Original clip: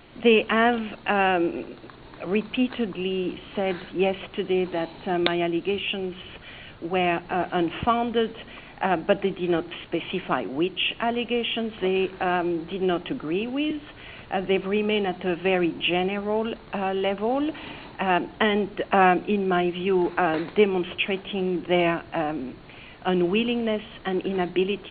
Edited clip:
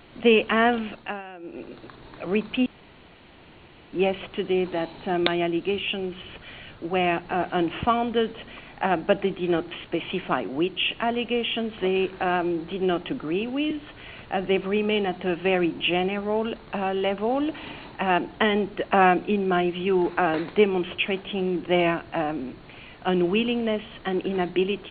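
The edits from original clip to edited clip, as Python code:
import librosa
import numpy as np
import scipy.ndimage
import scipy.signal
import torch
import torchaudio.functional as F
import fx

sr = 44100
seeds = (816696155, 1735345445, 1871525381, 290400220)

y = fx.edit(x, sr, fx.fade_down_up(start_s=0.88, length_s=0.88, db=-19.5, fade_s=0.34),
    fx.room_tone_fill(start_s=2.66, length_s=1.27), tone=tone)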